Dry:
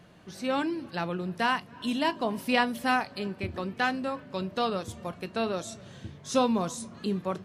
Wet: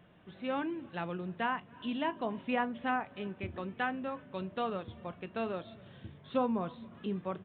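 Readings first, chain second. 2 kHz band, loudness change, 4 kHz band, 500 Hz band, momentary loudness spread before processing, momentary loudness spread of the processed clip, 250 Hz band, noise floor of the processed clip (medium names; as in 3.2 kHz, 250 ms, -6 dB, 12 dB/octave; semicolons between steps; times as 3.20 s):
-7.5 dB, -6.5 dB, -12.0 dB, -6.0 dB, 10 LU, 9 LU, -6.0 dB, -57 dBFS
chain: low-pass that closes with the level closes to 1.7 kHz, closed at -21 dBFS; resampled via 8 kHz; trim -6 dB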